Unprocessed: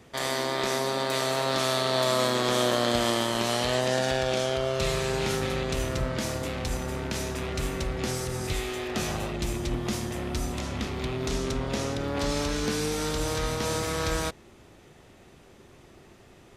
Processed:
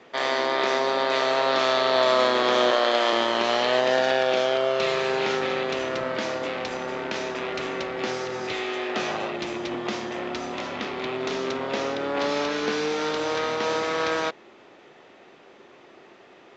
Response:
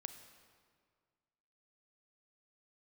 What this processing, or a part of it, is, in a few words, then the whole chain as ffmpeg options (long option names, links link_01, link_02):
telephone: -filter_complex "[0:a]asettb=1/sr,asplit=3[link_01][link_02][link_03];[link_01]atrim=end=2.714[link_04];[link_02]atrim=start=2.71:end=3.13,asetpts=PTS-STARTPTS,afade=type=in:duration=0.004:curve=qsin,afade=type=out:start_time=0.416:duration=0.004:curve=qsin,highpass=340[link_05];[link_03]atrim=start=3.126[link_06];[link_04][link_05]acrossfade=duration=0.004:curve1=hsin:curve2=qsin[link_07];[link_07][link_06]acrossfade=duration=0.004:curve1=qsin:curve2=hsin,highpass=360,lowpass=3500,volume=6dB" -ar 16000 -c:a pcm_mulaw